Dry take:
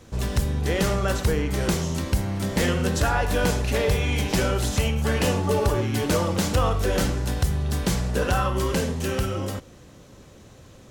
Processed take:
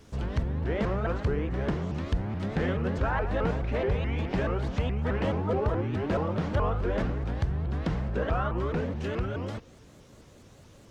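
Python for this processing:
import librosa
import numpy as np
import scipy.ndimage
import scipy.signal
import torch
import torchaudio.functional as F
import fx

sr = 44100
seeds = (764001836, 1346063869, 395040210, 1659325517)

y = fx.env_lowpass_down(x, sr, base_hz=1900.0, full_db=-21.0)
y = fx.quant_dither(y, sr, seeds[0], bits=12, dither='none')
y = fx.vibrato_shape(y, sr, shape='saw_up', rate_hz=4.7, depth_cents=250.0)
y = y * librosa.db_to_amplitude(-5.0)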